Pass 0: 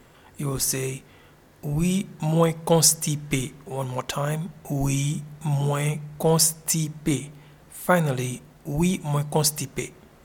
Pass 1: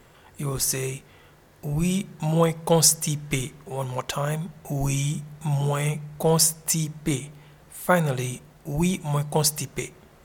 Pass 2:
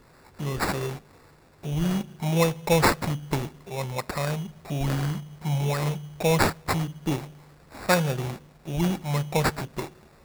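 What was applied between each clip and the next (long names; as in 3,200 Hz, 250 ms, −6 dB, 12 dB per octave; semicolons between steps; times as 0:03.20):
parametric band 260 Hz −5 dB 0.51 octaves
sample-rate reduction 3,100 Hz, jitter 0%; level −1.5 dB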